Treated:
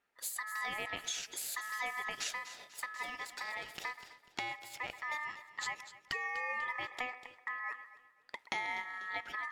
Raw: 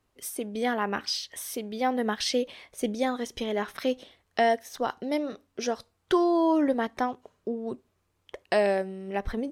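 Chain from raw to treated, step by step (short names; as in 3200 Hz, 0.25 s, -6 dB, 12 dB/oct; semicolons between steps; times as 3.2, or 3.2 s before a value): 2.29–4.9 half-wave gain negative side -12 dB; compressor, threshold -33 dBFS, peak gain reduction 13.5 dB; HPF 110 Hz; split-band echo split 970 Hz, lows 0.128 s, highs 0.246 s, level -13 dB; ring modulator 1500 Hz; low shelf 230 Hz -8.5 dB; notch 1100 Hz, Q 6.2; mismatched tape noise reduction decoder only; gain +1 dB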